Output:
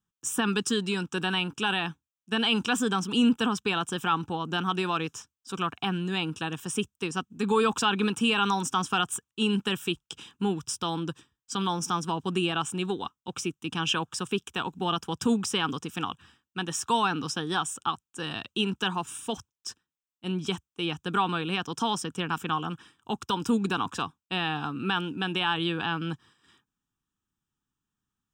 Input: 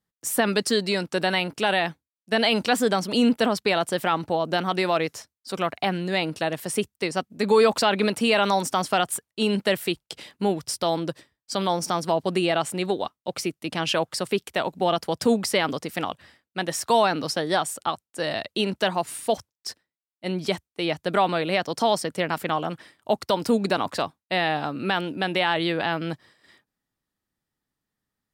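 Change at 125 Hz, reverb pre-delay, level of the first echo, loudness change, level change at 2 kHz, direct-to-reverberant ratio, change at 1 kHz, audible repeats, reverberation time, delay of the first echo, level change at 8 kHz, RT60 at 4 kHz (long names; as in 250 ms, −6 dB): −1.0 dB, no reverb audible, no echo audible, −4.0 dB, −4.0 dB, no reverb audible, −4.0 dB, no echo audible, no reverb audible, no echo audible, −2.5 dB, no reverb audible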